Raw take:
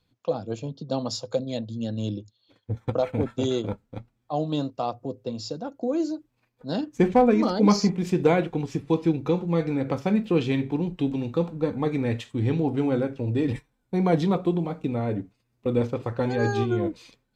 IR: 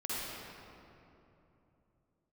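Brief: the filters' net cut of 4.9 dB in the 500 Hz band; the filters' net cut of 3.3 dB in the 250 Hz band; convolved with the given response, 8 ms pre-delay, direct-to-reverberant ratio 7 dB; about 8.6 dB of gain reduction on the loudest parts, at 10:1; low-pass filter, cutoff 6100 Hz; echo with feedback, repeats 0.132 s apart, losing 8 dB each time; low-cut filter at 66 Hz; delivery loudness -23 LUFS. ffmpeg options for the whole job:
-filter_complex "[0:a]highpass=66,lowpass=6.1k,equalizer=f=250:t=o:g=-3,equalizer=f=500:t=o:g=-5,acompressor=threshold=-26dB:ratio=10,aecho=1:1:132|264|396|528|660:0.398|0.159|0.0637|0.0255|0.0102,asplit=2[a][b];[1:a]atrim=start_sample=2205,adelay=8[c];[b][c]afir=irnorm=-1:irlink=0,volume=-11.5dB[d];[a][d]amix=inputs=2:normalize=0,volume=8.5dB"

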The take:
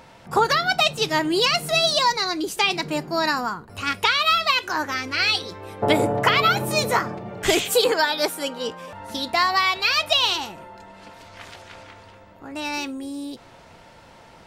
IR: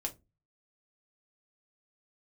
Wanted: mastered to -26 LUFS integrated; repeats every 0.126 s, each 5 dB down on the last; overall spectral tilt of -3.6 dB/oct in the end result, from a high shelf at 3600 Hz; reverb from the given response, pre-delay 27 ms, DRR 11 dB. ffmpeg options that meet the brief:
-filter_complex "[0:a]highshelf=f=3.6k:g=-8,aecho=1:1:126|252|378|504|630|756|882:0.562|0.315|0.176|0.0988|0.0553|0.031|0.0173,asplit=2[a][b];[1:a]atrim=start_sample=2205,adelay=27[c];[b][c]afir=irnorm=-1:irlink=0,volume=-11.5dB[d];[a][d]amix=inputs=2:normalize=0,volume=-5dB"

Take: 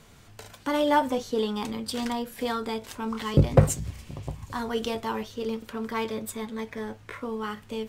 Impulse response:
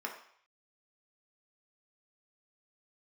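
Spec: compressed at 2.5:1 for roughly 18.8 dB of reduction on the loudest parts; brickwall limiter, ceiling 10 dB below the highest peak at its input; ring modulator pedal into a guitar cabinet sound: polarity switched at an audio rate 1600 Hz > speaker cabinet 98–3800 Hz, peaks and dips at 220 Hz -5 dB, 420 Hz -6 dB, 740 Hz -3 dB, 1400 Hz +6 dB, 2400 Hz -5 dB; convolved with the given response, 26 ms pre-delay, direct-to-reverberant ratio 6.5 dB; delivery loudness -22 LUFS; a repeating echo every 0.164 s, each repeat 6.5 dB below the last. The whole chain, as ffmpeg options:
-filter_complex "[0:a]acompressor=threshold=-41dB:ratio=2.5,alimiter=level_in=7dB:limit=-24dB:level=0:latency=1,volume=-7dB,aecho=1:1:164|328|492|656|820|984:0.473|0.222|0.105|0.0491|0.0231|0.0109,asplit=2[a][b];[1:a]atrim=start_sample=2205,adelay=26[c];[b][c]afir=irnorm=-1:irlink=0,volume=-9dB[d];[a][d]amix=inputs=2:normalize=0,aeval=exprs='val(0)*sgn(sin(2*PI*1600*n/s))':c=same,highpass=98,equalizer=f=220:t=q:w=4:g=-5,equalizer=f=420:t=q:w=4:g=-6,equalizer=f=740:t=q:w=4:g=-3,equalizer=f=1.4k:t=q:w=4:g=6,equalizer=f=2.4k:t=q:w=4:g=-5,lowpass=f=3.8k:w=0.5412,lowpass=f=3.8k:w=1.3066,volume=16.5dB"

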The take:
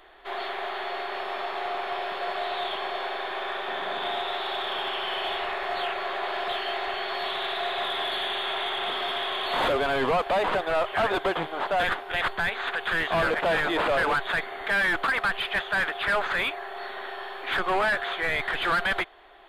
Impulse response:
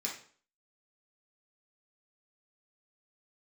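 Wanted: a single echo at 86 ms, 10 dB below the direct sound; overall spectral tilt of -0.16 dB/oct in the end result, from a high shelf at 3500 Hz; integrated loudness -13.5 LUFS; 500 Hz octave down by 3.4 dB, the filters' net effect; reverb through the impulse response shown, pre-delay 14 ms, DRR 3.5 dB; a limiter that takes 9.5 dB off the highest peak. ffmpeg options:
-filter_complex "[0:a]equalizer=f=500:t=o:g=-4.5,highshelf=f=3.5k:g=-5,alimiter=level_in=4.5dB:limit=-24dB:level=0:latency=1,volume=-4.5dB,aecho=1:1:86:0.316,asplit=2[a][b];[1:a]atrim=start_sample=2205,adelay=14[c];[b][c]afir=irnorm=-1:irlink=0,volume=-5.5dB[d];[a][d]amix=inputs=2:normalize=0,volume=19.5dB"

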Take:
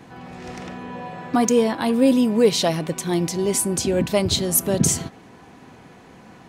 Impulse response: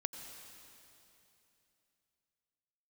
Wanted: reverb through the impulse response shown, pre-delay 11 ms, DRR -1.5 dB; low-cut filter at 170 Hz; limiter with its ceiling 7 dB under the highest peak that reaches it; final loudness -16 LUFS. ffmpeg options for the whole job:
-filter_complex "[0:a]highpass=170,alimiter=limit=-12.5dB:level=0:latency=1,asplit=2[a][b];[1:a]atrim=start_sample=2205,adelay=11[c];[b][c]afir=irnorm=-1:irlink=0,volume=2dB[d];[a][d]amix=inputs=2:normalize=0,volume=3dB"

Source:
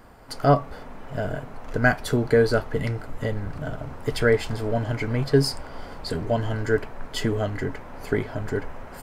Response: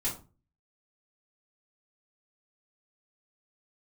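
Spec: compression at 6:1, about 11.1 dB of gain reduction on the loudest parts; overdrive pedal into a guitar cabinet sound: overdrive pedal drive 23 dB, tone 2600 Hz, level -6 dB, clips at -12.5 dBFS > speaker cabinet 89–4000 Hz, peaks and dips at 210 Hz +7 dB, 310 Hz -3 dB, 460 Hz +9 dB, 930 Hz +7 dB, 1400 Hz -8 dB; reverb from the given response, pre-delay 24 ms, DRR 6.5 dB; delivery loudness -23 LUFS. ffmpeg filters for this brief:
-filter_complex "[0:a]acompressor=threshold=-25dB:ratio=6,asplit=2[a][b];[1:a]atrim=start_sample=2205,adelay=24[c];[b][c]afir=irnorm=-1:irlink=0,volume=-11dB[d];[a][d]amix=inputs=2:normalize=0,asplit=2[e][f];[f]highpass=f=720:p=1,volume=23dB,asoftclip=type=tanh:threshold=-12.5dB[g];[e][g]amix=inputs=2:normalize=0,lowpass=f=2.6k:p=1,volume=-6dB,highpass=89,equalizer=f=210:t=q:w=4:g=7,equalizer=f=310:t=q:w=4:g=-3,equalizer=f=460:t=q:w=4:g=9,equalizer=f=930:t=q:w=4:g=7,equalizer=f=1.4k:t=q:w=4:g=-8,lowpass=f=4k:w=0.5412,lowpass=f=4k:w=1.3066,volume=-3dB"

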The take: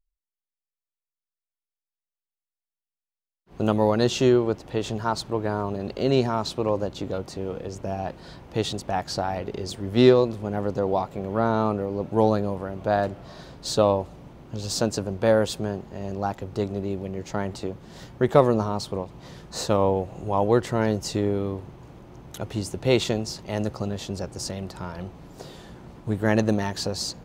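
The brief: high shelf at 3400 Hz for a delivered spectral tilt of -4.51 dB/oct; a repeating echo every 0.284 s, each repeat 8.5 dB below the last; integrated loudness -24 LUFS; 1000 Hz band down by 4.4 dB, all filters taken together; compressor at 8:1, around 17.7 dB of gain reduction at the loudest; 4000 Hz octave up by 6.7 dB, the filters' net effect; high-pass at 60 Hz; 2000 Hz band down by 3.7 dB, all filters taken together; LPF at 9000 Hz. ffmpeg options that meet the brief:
-af "highpass=60,lowpass=9k,equalizer=f=1k:t=o:g=-5.5,equalizer=f=2k:t=o:g=-6.5,highshelf=f=3.4k:g=6,equalizer=f=4k:t=o:g=5.5,acompressor=threshold=-30dB:ratio=8,aecho=1:1:284|568|852|1136:0.376|0.143|0.0543|0.0206,volume=11dB"

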